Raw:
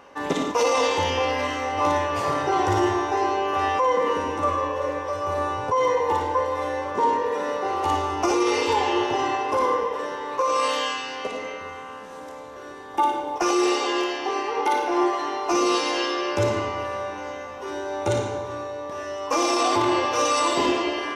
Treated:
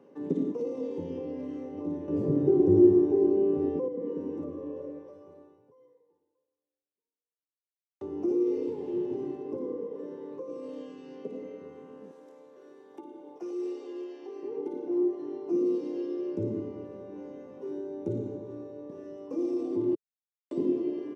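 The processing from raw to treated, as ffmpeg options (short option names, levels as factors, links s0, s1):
-filter_complex "[0:a]asettb=1/sr,asplit=3[s0][s1][s2];[s0]atrim=end=8.694[s3];[s1]atrim=start=8.69:end=9.49,asetpts=PTS-STARTPTS,afade=t=in:d=0.004:c=qsin,afade=t=out:st=0.796:d=0.004:c=qsin,asoftclip=type=hard:threshold=0.0891[s4];[s2]atrim=start=9.486[s5];[s3][s4]acrossfade=d=0.004:c1=hsin:c2=qsin[s6];[s6][s5]acrossfade=d=0.004:c1=qsin:c2=hsin,asettb=1/sr,asplit=3[s7][s8][s9];[s7]atrim=end=12.114[s10];[s8]atrim=start=12.11:end=14.43,asetpts=PTS-STARTPTS,afade=t=in:d=0.004:c=qsin,afade=t=out:st=2.316:d=0.004:c=qsin,highpass=f=930:p=1[s11];[s9]atrim=start=14.426[s12];[s10][s11]acrossfade=d=0.004:c1=hsin:c2=qsin[s13];[s13][s12]acrossfade=d=0.004:c1=qsin:c2=hsin,asplit=6[s14][s15][s16][s17][s18][s19];[s14]atrim=end=2.082[s20];[s15]atrim=start=2.078:end=3.882,asetpts=PTS-STARTPTS,volume=2.99[s21];[s16]atrim=start=3.878:end=8.01,asetpts=PTS-STARTPTS,afade=t=out:st=0.922:d=3.21:c=exp[s22];[s17]atrim=start=8.01:end=19.95,asetpts=PTS-STARTPTS,afade=t=in:d=0.004:c=hsin,afade=t=out:st=11.936:d=0.004:c=hsin[s23];[s18]atrim=start=19.95:end=20.51,asetpts=PTS-STARTPTS,volume=0[s24];[s19]atrim=start=20.51,asetpts=PTS-STARTPTS,afade=t=in:d=0.004:c=hsin[s25];[s20][s21]acrossfade=d=0.004:c1=hsin:c2=hsin[s26];[s22][s23][s24][s25]concat=n=4:v=0:a=1[s27];[s26][s27]acrossfade=d=0.004:c1=hsin:c2=hsin,highpass=f=140:w=0.5412,highpass=f=140:w=1.3066,acrossover=split=400[s28][s29];[s29]acompressor=threshold=0.0158:ratio=6[s30];[s28][s30]amix=inputs=2:normalize=0,firequalizer=gain_entry='entry(420,0);entry(670,-15);entry(1200,-22)':delay=0.05:min_phase=1"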